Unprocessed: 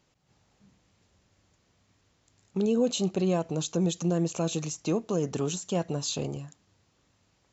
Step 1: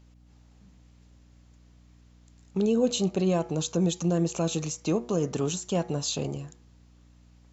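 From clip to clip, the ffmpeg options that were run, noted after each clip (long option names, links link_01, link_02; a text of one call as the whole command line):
ffmpeg -i in.wav -af "bandreject=frequency=120.3:width_type=h:width=4,bandreject=frequency=240.6:width_type=h:width=4,bandreject=frequency=360.9:width_type=h:width=4,bandreject=frequency=481.2:width_type=h:width=4,bandreject=frequency=601.5:width_type=h:width=4,bandreject=frequency=721.8:width_type=h:width=4,bandreject=frequency=842.1:width_type=h:width=4,bandreject=frequency=962.4:width_type=h:width=4,bandreject=frequency=1082.7:width_type=h:width=4,bandreject=frequency=1203:width_type=h:width=4,bandreject=frequency=1323.3:width_type=h:width=4,bandreject=frequency=1443.6:width_type=h:width=4,bandreject=frequency=1563.9:width_type=h:width=4,bandreject=frequency=1684.2:width_type=h:width=4,bandreject=frequency=1804.5:width_type=h:width=4,bandreject=frequency=1924.8:width_type=h:width=4,bandreject=frequency=2045.1:width_type=h:width=4,bandreject=frequency=2165.4:width_type=h:width=4,bandreject=frequency=2285.7:width_type=h:width=4,bandreject=frequency=2406:width_type=h:width=4,aeval=exprs='val(0)+0.00158*(sin(2*PI*60*n/s)+sin(2*PI*2*60*n/s)/2+sin(2*PI*3*60*n/s)/3+sin(2*PI*4*60*n/s)/4+sin(2*PI*5*60*n/s)/5)':channel_layout=same,volume=1.5dB" out.wav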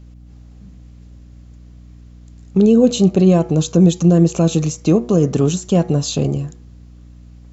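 ffmpeg -i in.wav -af "lowshelf=frequency=450:gain=10,bandreject=frequency=900:width=10,volume=6dB" out.wav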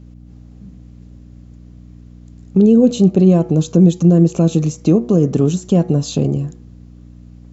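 ffmpeg -i in.wav -filter_complex "[0:a]equalizer=frequency=230:width=0.44:gain=8,asplit=2[link_01][link_02];[link_02]acompressor=threshold=-14dB:ratio=6,volume=-3dB[link_03];[link_01][link_03]amix=inputs=2:normalize=0,volume=-7.5dB" out.wav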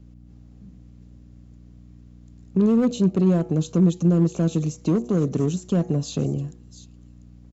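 ffmpeg -i in.wav -filter_complex "[0:a]acrossover=split=290|3200[link_01][link_02][link_03];[link_02]asoftclip=type=hard:threshold=-15.5dB[link_04];[link_03]aecho=1:1:694:0.266[link_05];[link_01][link_04][link_05]amix=inputs=3:normalize=0,volume=-7.5dB" out.wav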